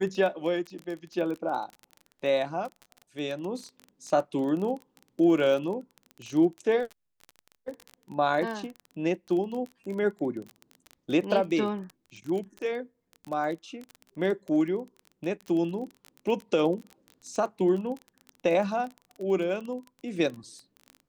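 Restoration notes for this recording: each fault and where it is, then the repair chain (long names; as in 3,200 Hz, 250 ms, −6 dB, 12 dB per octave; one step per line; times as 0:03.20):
surface crackle 22 per second −33 dBFS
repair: click removal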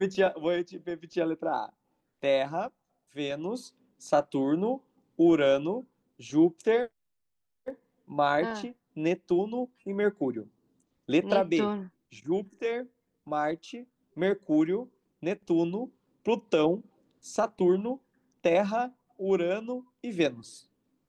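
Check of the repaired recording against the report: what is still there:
none of them is left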